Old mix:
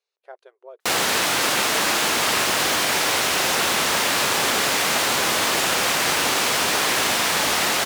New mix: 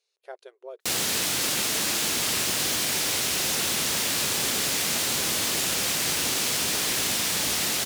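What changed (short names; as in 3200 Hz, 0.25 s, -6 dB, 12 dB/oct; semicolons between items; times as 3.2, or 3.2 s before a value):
speech +11.5 dB; master: add bell 1000 Hz -13 dB 3 oct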